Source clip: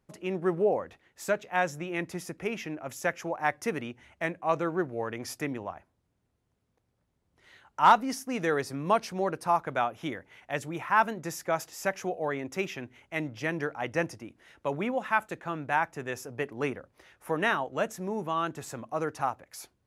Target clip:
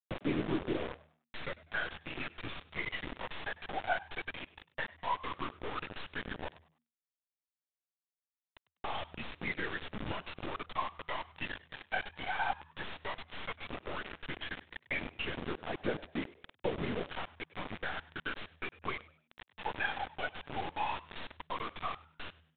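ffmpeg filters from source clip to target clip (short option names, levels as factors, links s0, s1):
-filter_complex "[0:a]aemphasis=mode=production:type=riaa,agate=range=0.0224:threshold=0.00158:ratio=3:detection=peak,anlmdn=0.001,lowshelf=f=88:g=6.5,acompressor=threshold=0.00891:ratio=8,afftfilt=real='hypot(re,im)*cos(2*PI*random(0))':imag='hypot(re,im)*sin(2*PI*random(1))':win_size=512:overlap=0.75,aeval=exprs='0.0168*(cos(1*acos(clip(val(0)/0.0168,-1,1)))-cos(1*PI/2))+0.00075*(cos(8*acos(clip(val(0)/0.0168,-1,1)))-cos(8*PI/2))':c=same,aphaser=in_gain=1:out_gain=1:delay=1.2:decay=0.74:speed=0.14:type=triangular,aresample=16000,acrusher=bits=7:mix=0:aa=0.000001,aresample=44100,asetrate=38808,aresample=44100,asplit=4[s0][s1][s2][s3];[s1]adelay=99,afreqshift=78,volume=0.106[s4];[s2]adelay=198,afreqshift=156,volume=0.0327[s5];[s3]adelay=297,afreqshift=234,volume=0.0102[s6];[s0][s4][s5][s6]amix=inputs=4:normalize=0,aresample=8000,aresample=44100,volume=2.99"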